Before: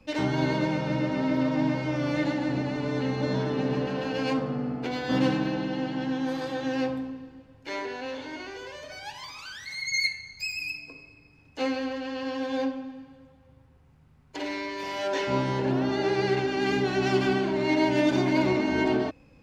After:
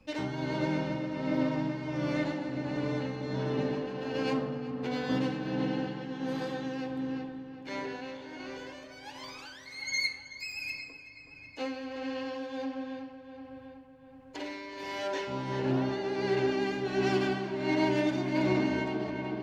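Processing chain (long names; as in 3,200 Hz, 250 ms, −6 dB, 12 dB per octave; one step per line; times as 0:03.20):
feedback echo with a low-pass in the loop 373 ms, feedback 67%, low-pass 4,200 Hz, level −9 dB
amplitude tremolo 1.4 Hz, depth 46%
level −4 dB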